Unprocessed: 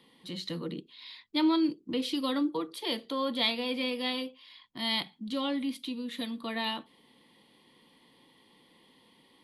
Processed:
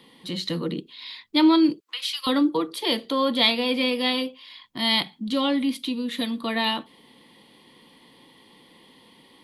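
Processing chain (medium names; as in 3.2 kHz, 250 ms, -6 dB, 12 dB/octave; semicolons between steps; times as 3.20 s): 1.80–2.27 s: high-pass 1.2 kHz 24 dB/octave; trim +8.5 dB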